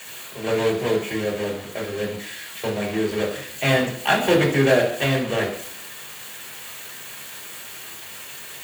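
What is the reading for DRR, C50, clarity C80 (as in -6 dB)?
-4.0 dB, 7.5 dB, 10.5 dB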